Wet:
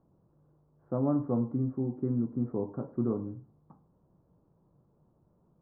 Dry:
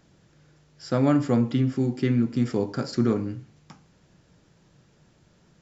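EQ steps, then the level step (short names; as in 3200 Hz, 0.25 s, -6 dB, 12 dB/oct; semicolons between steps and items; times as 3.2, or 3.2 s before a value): Chebyshev low-pass 1100 Hz, order 4; -7.0 dB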